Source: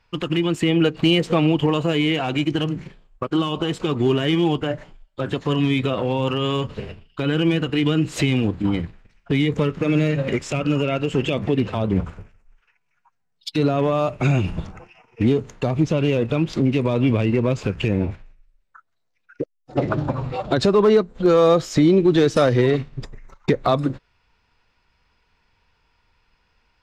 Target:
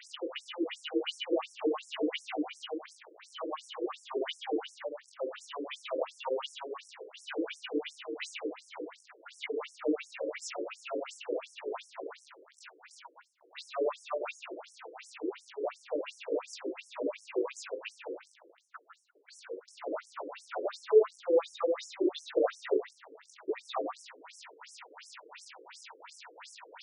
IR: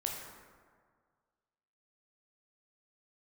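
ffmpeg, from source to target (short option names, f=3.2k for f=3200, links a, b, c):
-filter_complex "[0:a]aeval=exprs='val(0)+0.5*0.0398*sgn(val(0))':c=same[a];[1:a]atrim=start_sample=2205,afade=t=out:st=0.37:d=0.01,atrim=end_sample=16758,asetrate=48510,aresample=44100[b];[a][b]afir=irnorm=-1:irlink=0,afftfilt=real='re*between(b*sr/1024,390*pow(7600/390,0.5+0.5*sin(2*PI*2.8*pts/sr))/1.41,390*pow(7600/390,0.5+0.5*sin(2*PI*2.8*pts/sr))*1.41)':imag='im*between(b*sr/1024,390*pow(7600/390,0.5+0.5*sin(2*PI*2.8*pts/sr))/1.41,390*pow(7600/390,0.5+0.5*sin(2*PI*2.8*pts/sr))*1.41)':win_size=1024:overlap=0.75,volume=-8dB"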